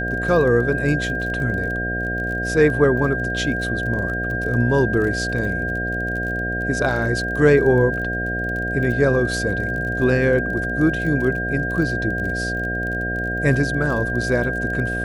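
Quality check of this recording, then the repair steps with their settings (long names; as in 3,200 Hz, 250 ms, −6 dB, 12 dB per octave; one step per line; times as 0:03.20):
mains buzz 60 Hz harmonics 12 −27 dBFS
surface crackle 26 per second −28 dBFS
whistle 1,600 Hz −24 dBFS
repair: click removal
hum removal 60 Hz, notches 12
notch filter 1,600 Hz, Q 30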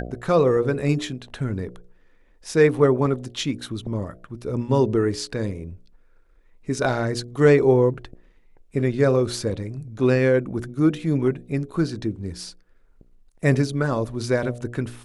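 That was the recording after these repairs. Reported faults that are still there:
none of them is left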